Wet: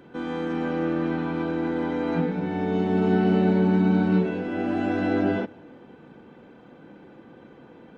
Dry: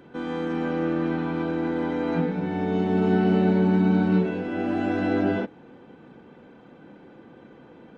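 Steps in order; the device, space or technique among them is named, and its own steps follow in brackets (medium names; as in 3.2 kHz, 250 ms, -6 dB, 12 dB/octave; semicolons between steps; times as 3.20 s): compressed reverb return (on a send at -12 dB: reverberation RT60 0.95 s, pre-delay 40 ms + compression, threshold -35 dBFS, peak gain reduction 17.5 dB)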